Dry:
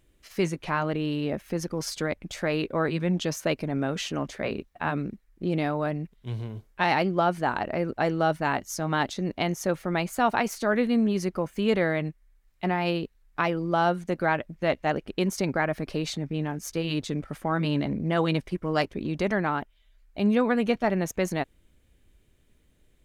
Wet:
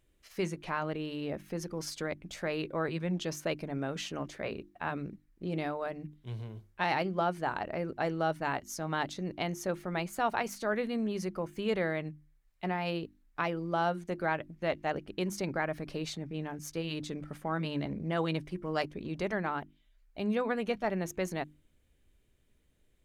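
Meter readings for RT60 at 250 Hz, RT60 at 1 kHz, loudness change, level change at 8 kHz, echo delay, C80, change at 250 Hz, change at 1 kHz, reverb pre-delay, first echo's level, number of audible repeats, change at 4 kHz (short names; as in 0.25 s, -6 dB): none, none, -7.0 dB, -6.5 dB, none, none, -8.5 dB, -6.5 dB, none, none, none, -6.5 dB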